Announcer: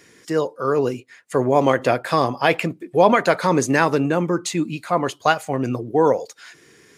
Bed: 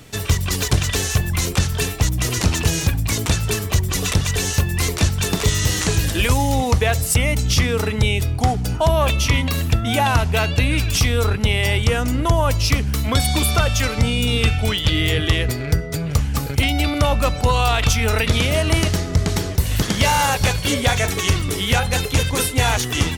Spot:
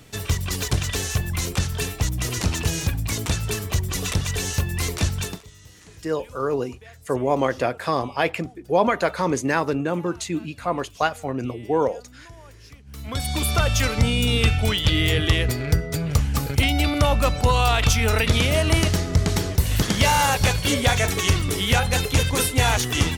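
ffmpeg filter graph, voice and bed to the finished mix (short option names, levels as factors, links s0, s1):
-filter_complex "[0:a]adelay=5750,volume=0.596[s0];[1:a]volume=12.6,afade=t=out:st=5.18:d=0.24:silence=0.0668344,afade=t=in:st=12.84:d=0.91:silence=0.0446684[s1];[s0][s1]amix=inputs=2:normalize=0"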